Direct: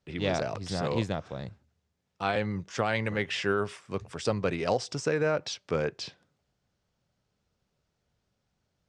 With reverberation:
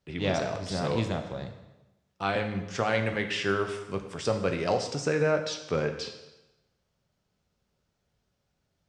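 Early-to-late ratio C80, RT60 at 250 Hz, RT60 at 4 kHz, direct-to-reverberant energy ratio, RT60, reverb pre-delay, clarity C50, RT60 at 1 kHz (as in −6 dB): 10.5 dB, 1.0 s, 0.90 s, 5.5 dB, 1.0 s, 5 ms, 8.5 dB, 1.0 s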